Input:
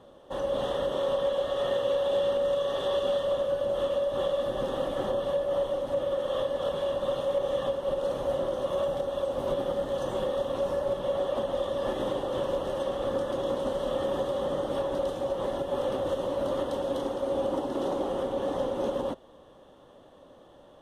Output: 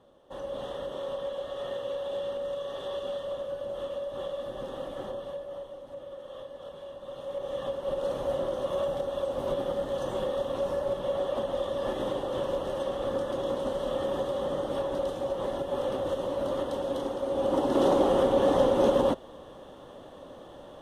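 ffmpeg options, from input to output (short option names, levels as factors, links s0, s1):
-af "volume=4.73,afade=t=out:st=5.01:d=0.67:silence=0.473151,afade=t=in:st=7.05:d=1:silence=0.237137,afade=t=in:st=17.35:d=0.46:silence=0.398107"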